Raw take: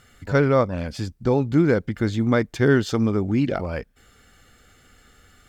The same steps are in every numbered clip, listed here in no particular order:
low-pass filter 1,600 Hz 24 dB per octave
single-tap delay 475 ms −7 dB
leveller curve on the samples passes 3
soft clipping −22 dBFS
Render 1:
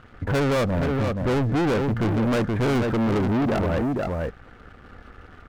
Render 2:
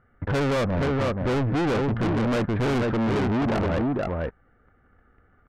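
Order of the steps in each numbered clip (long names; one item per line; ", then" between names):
low-pass filter, then soft clipping, then single-tap delay, then leveller curve on the samples
single-tap delay, then leveller curve on the samples, then low-pass filter, then soft clipping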